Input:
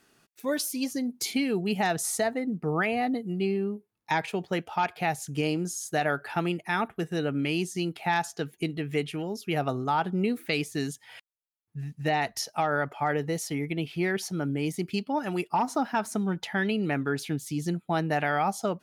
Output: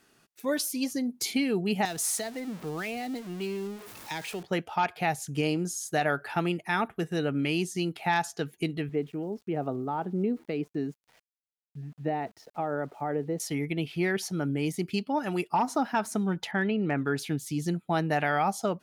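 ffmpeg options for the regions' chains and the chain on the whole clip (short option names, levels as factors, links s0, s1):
-filter_complex "[0:a]asettb=1/sr,asplit=3[s0][s1][s2];[s0]atrim=end=1.854[s3];[s1]atrim=start=1.85:end=4.43,asetpts=PTS-STARTPTS,afade=t=in:d=0.004:c=qsin,afade=t=out:st=2.576:d=0.004:c=qsin,aeval=exprs='val(0)+0.5*0.015*sgn(val(0))':c=same,lowshelf=f=300:g=-11.5,acrossover=split=400|3000[s4][s5][s6];[s5]acompressor=threshold=0.00562:ratio=2:attack=3.2:release=140:knee=2.83:detection=peak[s7];[s4][s7][s6]amix=inputs=3:normalize=0[s8];[s2]atrim=start=4.426[s9];[s3][s8]acrossfade=d=0.004:c1=hsin:c2=qsin[s10];[s10][s9]acrossfade=d=0.004:c1=qsin:c2=hsin,asettb=1/sr,asplit=3[s11][s12][s13];[s11]atrim=end=8.894[s14];[s12]atrim=start=8.89:end=13.4,asetpts=PTS-STARTPTS,afade=t=in:d=0.004:c=qsin,afade=t=out:st=4.506:d=0.004:c=qsin,bandpass=f=320:t=q:w=0.74,aeval=exprs='val(0)*gte(abs(val(0)),0.0015)':c=same[s15];[s13]atrim=start=13.396[s16];[s14][s15]acrossfade=d=0.004:c1=hsin:c2=qsin[s17];[s17][s16]acrossfade=d=0.004:c1=qsin:c2=hsin,asettb=1/sr,asplit=3[s18][s19][s20];[s18]atrim=end=16.514[s21];[s19]atrim=start=16.51:end=16.98,asetpts=PTS-STARTPTS,afade=t=in:d=0.004:c=qsin,afade=t=out:st=0.466:d=0.004:c=qsin,lowpass=2300,asoftclip=type=hard:threshold=0.133[s22];[s20]atrim=start=16.976[s23];[s21][s22]acrossfade=d=0.004:c1=hsin:c2=qsin[s24];[s24][s23]acrossfade=d=0.004:c1=qsin:c2=hsin"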